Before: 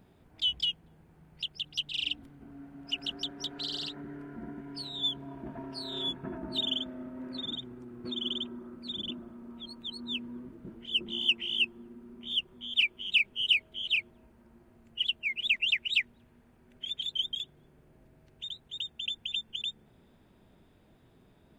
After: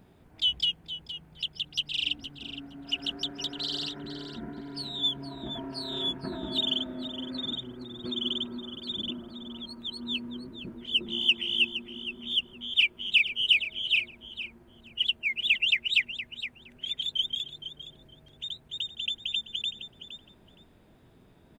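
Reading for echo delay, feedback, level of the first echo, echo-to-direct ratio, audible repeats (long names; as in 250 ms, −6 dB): 466 ms, 15%, −12.0 dB, −12.0 dB, 2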